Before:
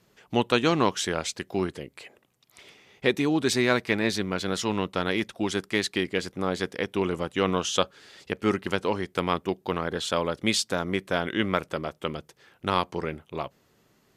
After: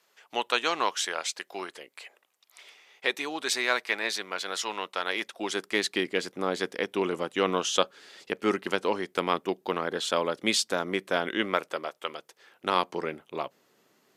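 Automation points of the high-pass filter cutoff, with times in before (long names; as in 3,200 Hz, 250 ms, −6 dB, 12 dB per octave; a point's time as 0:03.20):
0:05.01 700 Hz
0:05.89 260 Hz
0:11.30 260 Hz
0:12.07 640 Hz
0:12.80 260 Hz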